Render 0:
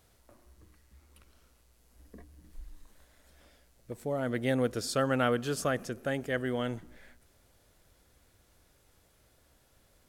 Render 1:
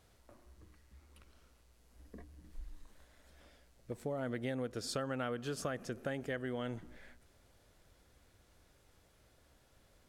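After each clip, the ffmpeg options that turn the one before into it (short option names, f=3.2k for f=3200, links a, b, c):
-af "highshelf=f=9.6k:g=-9,acompressor=threshold=-34dB:ratio=6,volume=-1dB"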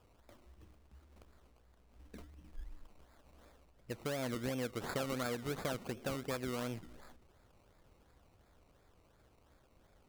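-af "acrusher=samples=21:mix=1:aa=0.000001:lfo=1:lforange=12.6:lforate=2.8"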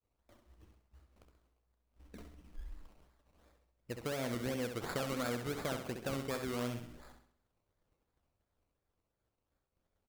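-af "agate=range=-33dB:threshold=-54dB:ratio=3:detection=peak,aecho=1:1:66|132|198|264|330:0.447|0.188|0.0788|0.0331|0.0139"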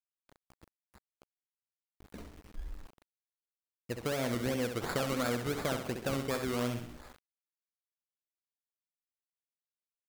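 -af "aeval=exprs='val(0)*gte(abs(val(0)),0.00178)':c=same,volume=4.5dB"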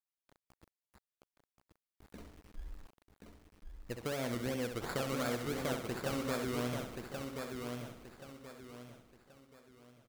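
-af "aecho=1:1:1079|2158|3237|4316:0.562|0.191|0.065|0.0221,volume=-4dB"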